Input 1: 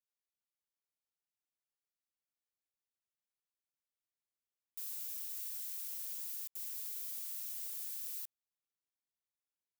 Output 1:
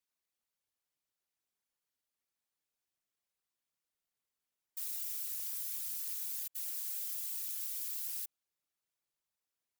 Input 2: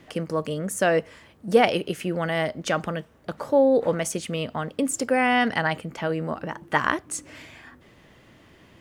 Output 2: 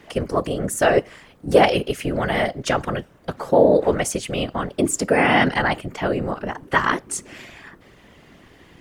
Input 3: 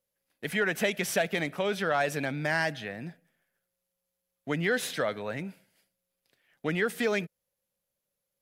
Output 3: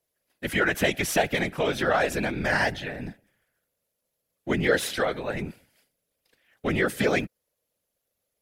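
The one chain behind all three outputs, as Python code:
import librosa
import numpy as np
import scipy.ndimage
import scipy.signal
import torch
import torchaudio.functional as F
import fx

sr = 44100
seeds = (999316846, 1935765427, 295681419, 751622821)

y = fx.wow_flutter(x, sr, seeds[0], rate_hz=2.1, depth_cents=19.0)
y = fx.whisperise(y, sr, seeds[1])
y = y * 10.0 ** (4.0 / 20.0)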